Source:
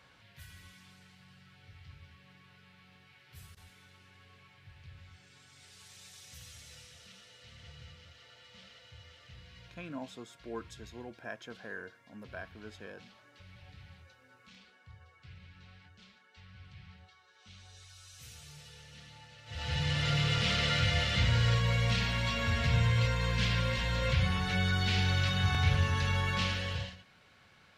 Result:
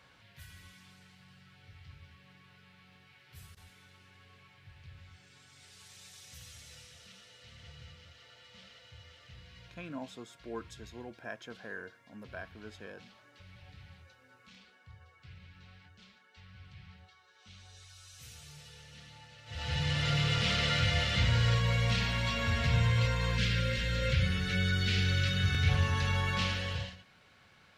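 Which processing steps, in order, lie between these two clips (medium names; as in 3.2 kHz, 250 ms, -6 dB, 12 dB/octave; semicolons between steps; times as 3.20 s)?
time-frequency box 23.38–25.69 s, 560–1200 Hz -14 dB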